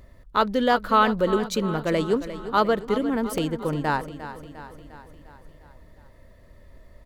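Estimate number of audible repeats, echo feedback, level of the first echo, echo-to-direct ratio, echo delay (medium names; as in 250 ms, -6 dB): 5, 58%, -13.0 dB, -11.0 dB, 352 ms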